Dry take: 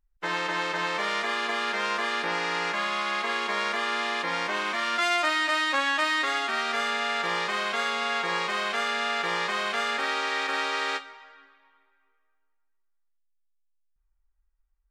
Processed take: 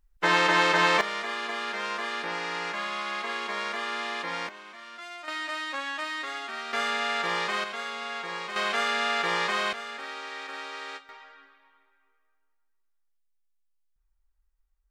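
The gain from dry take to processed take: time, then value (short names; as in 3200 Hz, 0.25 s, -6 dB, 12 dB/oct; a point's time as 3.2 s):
+7 dB
from 1.01 s -4 dB
from 4.49 s -17 dB
from 5.28 s -8 dB
from 6.73 s -0.5 dB
from 7.64 s -7 dB
from 8.56 s +1 dB
from 9.73 s -10 dB
from 11.09 s 0 dB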